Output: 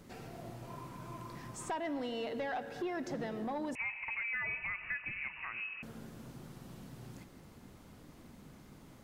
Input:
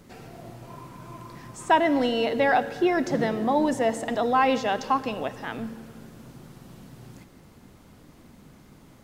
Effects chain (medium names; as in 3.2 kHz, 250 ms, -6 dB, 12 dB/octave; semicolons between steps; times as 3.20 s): compression 2.5:1, threshold -34 dBFS, peak gain reduction 13 dB; saturation -26 dBFS, distortion -17 dB; 3.75–5.83 s: frequency inversion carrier 2.8 kHz; trim -4 dB